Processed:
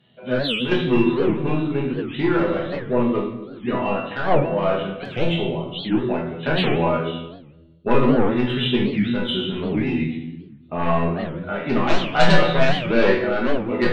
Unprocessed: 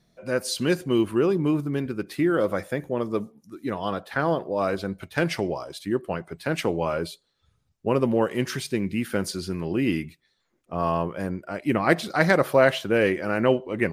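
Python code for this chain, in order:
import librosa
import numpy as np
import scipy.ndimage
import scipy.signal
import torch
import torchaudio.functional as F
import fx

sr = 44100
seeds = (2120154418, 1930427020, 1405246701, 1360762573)

y = fx.freq_compress(x, sr, knee_hz=2600.0, ratio=4.0)
y = scipy.signal.sosfilt(scipy.signal.butter(2, 82.0, 'highpass', fs=sr, output='sos'), y)
y = fx.fold_sine(y, sr, drive_db=9, ceiling_db=-4.5)
y = fx.tremolo_shape(y, sr, shape='saw_down', hz=1.4, depth_pct=65)
y = fx.resonator_bank(y, sr, root=40, chord='fifth', decay_s=0.23)
y = fx.tube_stage(y, sr, drive_db=19.0, bias=0.3, at=(2.36, 2.88))
y = fx.env_flanger(y, sr, rest_ms=12.0, full_db=-35.5, at=(5.05, 5.85))
y = fx.room_shoebox(y, sr, seeds[0], volume_m3=360.0, walls='mixed', distance_m=1.3)
y = fx.record_warp(y, sr, rpm=78.0, depth_cents=250.0)
y = y * 10.0 ** (2.0 / 20.0)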